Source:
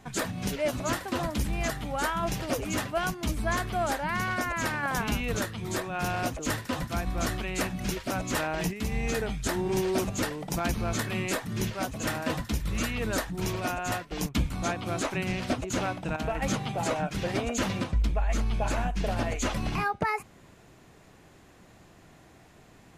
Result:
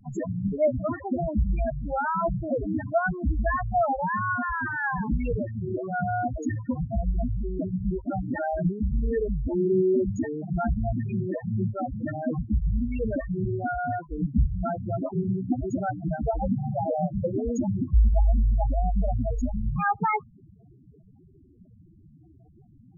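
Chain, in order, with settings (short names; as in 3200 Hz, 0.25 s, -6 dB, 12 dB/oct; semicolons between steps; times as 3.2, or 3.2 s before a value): loudest bins only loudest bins 4; vibrato 0.4 Hz 19 cents; gain +7 dB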